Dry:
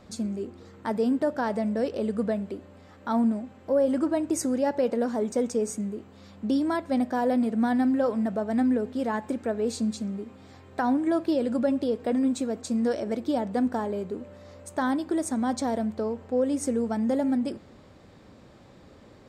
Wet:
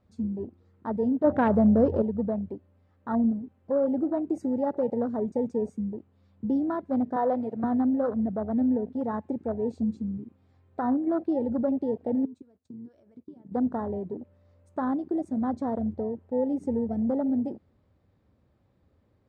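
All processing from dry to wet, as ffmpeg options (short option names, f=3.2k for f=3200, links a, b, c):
-filter_complex "[0:a]asettb=1/sr,asplit=3[a][b][c];[a]atrim=end=1.244[d];[b]atrim=start=1.24:end=2.02,asetpts=PTS-STARTPTS,afade=t=in:d=0.004:c=qsin,afade=t=out:st=0.776:d=0.004:c=qsin,lowshelf=f=250:g=5,acontrast=51[e];[c]atrim=start=2.016[f];[d][e]acrossfade=d=0.004:c1=hsin:c2=qsin[g];[g][f]acrossfade=d=0.004:c1=qsin:c2=hsin,asettb=1/sr,asplit=3[h][i][j];[h]atrim=end=7.164[k];[i]atrim=start=7.16:end=7.64,asetpts=PTS-STARTPTS,afade=t=in:d=0.004:c=qsin,afade=t=out:st=0.476:d=0.004:c=qsin,acontrast=24,highpass=460,lowpass=7.2k[l];[j]atrim=start=7.636[m];[k][l]acrossfade=d=0.004:c1=hsin:c2=qsin[n];[n][m]acrossfade=d=0.004:c1=qsin:c2=hsin,asettb=1/sr,asplit=3[o][p][q];[o]atrim=end=12.254[r];[p]atrim=start=12.25:end=13.52,asetpts=PTS-STARTPTS,afade=t=in:d=0.004:c=qsin,afade=t=out:st=1.266:d=0.004:c=qsin,agate=range=-26dB:threshold=-35dB:ratio=16:release=100:detection=peak,asplit=2[s][t];[t]adelay=16,volume=-13.5dB[u];[s][u]amix=inputs=2:normalize=0,atrim=end_sample=56007,acompressor=threshold=-39dB:ratio=8:attack=3.2:release=140:knee=1:detection=peak[v];[q]atrim=start=13.516[w];[r][v]acrossfade=d=0.004:c1=hsin:c2=qsin[x];[x][w]acrossfade=d=0.004:c1=qsin:c2=hsin,lowpass=f=2.6k:p=1,afwtdn=0.0398,equalizer=f=76:w=0.87:g=11.5,volume=-2.5dB"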